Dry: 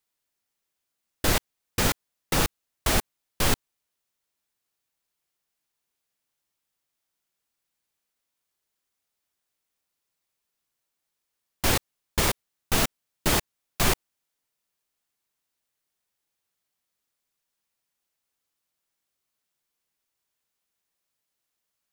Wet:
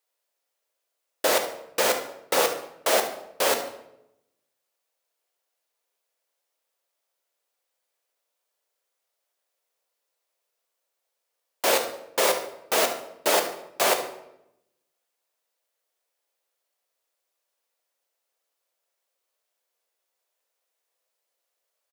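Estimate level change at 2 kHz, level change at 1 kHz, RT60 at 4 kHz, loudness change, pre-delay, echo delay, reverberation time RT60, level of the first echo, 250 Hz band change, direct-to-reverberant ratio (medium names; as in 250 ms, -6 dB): +1.5 dB, +4.5 dB, 0.60 s, +2.0 dB, 3 ms, 72 ms, 0.85 s, -13.0 dB, -6.0 dB, 5.0 dB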